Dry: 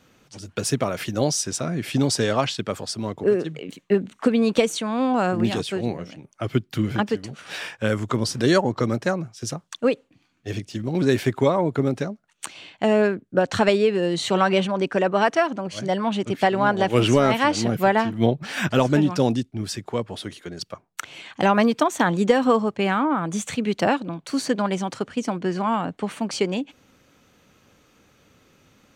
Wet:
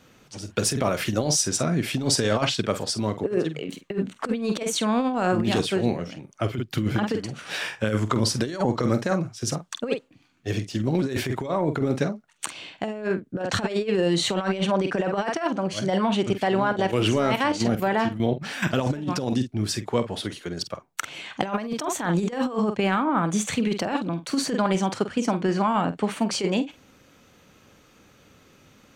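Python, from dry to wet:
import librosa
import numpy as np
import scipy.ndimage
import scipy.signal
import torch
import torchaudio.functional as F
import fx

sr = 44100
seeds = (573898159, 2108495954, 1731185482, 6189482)

y = fx.level_steps(x, sr, step_db=12, at=(16.32, 18.81))
y = fx.doubler(y, sr, ms=47.0, db=-11.5)
y = fx.over_compress(y, sr, threshold_db=-22.0, ratio=-0.5)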